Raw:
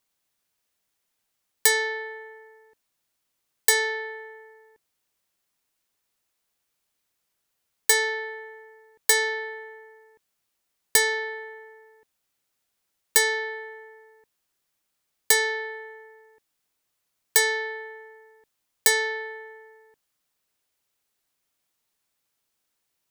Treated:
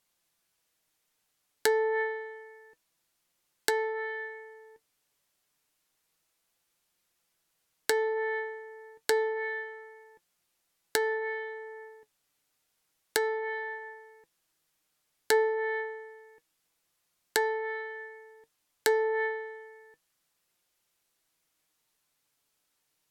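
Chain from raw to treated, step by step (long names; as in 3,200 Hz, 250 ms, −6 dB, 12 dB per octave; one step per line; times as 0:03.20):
treble cut that deepens with the level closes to 870 Hz, closed at −23 dBFS
flanger 0.29 Hz, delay 5.6 ms, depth 1.4 ms, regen +62%
level +6 dB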